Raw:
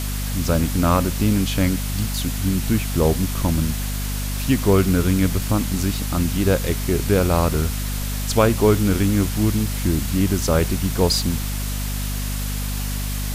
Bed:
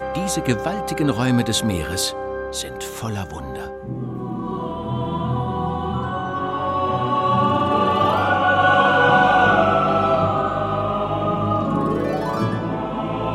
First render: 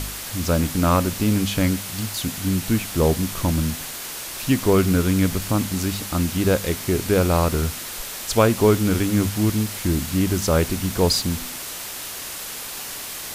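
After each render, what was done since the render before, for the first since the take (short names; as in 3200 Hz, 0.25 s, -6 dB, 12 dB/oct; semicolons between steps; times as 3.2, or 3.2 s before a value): de-hum 50 Hz, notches 5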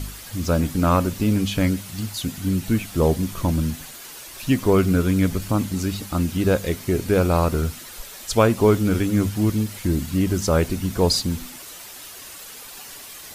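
denoiser 9 dB, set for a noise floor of -33 dBFS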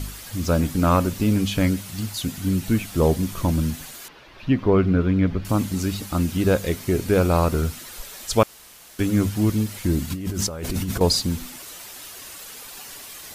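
4.08–5.45 air absorption 310 m; 8.43–8.99 room tone; 10.1–11.01 negative-ratio compressor -27 dBFS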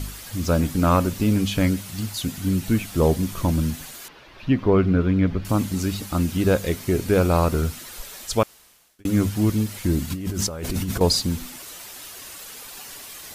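8.16–9.05 fade out linear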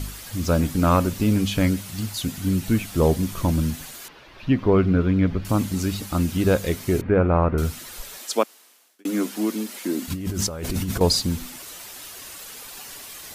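7.01–7.58 LPF 2100 Hz 24 dB/oct; 8.18–10.08 steep high-pass 230 Hz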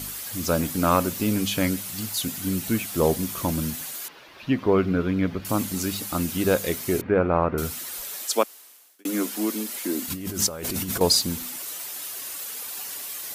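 HPF 250 Hz 6 dB/oct; high shelf 9700 Hz +10.5 dB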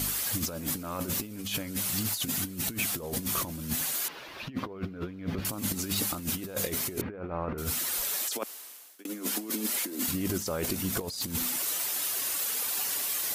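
limiter -17 dBFS, peak gain reduction 10.5 dB; negative-ratio compressor -31 dBFS, ratio -0.5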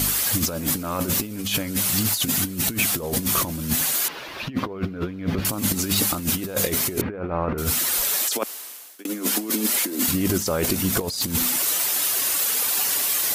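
gain +8.5 dB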